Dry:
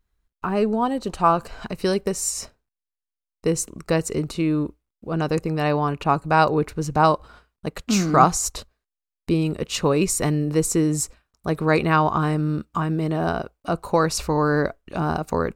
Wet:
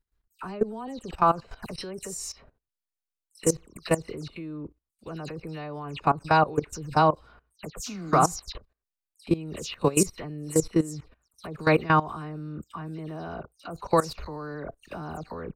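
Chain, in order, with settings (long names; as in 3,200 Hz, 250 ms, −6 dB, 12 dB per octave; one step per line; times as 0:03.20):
every frequency bin delayed by itself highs early, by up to 130 ms
output level in coarse steps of 18 dB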